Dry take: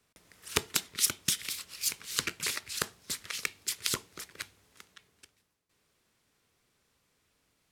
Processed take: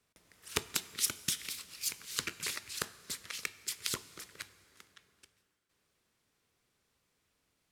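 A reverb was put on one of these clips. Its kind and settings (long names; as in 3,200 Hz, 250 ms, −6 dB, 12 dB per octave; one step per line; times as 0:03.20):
dense smooth reverb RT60 2.9 s, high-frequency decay 0.75×, DRR 15.5 dB
level −4.5 dB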